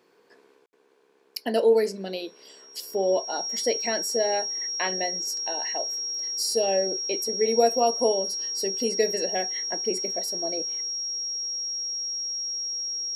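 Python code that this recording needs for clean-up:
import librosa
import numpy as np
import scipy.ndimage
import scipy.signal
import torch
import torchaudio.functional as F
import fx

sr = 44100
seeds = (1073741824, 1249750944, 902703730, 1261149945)

y = fx.notch(x, sr, hz=5600.0, q=30.0)
y = fx.fix_ambience(y, sr, seeds[0], print_start_s=2.27, print_end_s=2.77, start_s=0.66, end_s=0.73)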